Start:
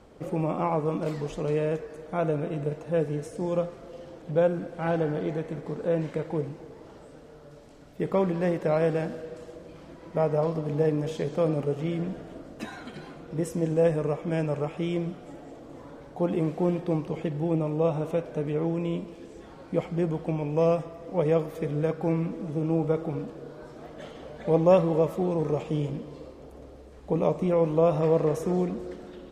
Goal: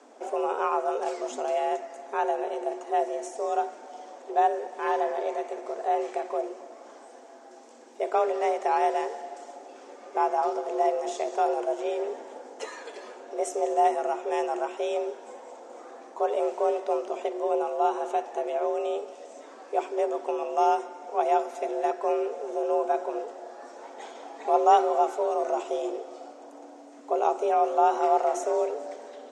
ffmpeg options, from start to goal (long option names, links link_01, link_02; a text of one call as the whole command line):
ffmpeg -i in.wav -af "aexciter=amount=4.1:drive=3.3:freq=5600,lowpass=frequency=7400:width=0.5412,lowpass=frequency=7400:width=1.3066,bandreject=frequency=50:width_type=h:width=6,bandreject=frequency=100:width_type=h:width=6,bandreject=frequency=150:width_type=h:width=6,afreqshift=220" out.wav